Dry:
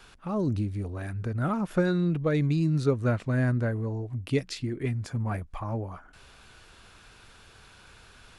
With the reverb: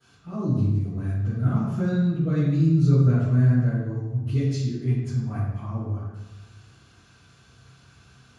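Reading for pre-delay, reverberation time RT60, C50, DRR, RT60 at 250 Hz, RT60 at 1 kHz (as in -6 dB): 3 ms, 1.1 s, -1.0 dB, -20.0 dB, 1.4 s, 0.95 s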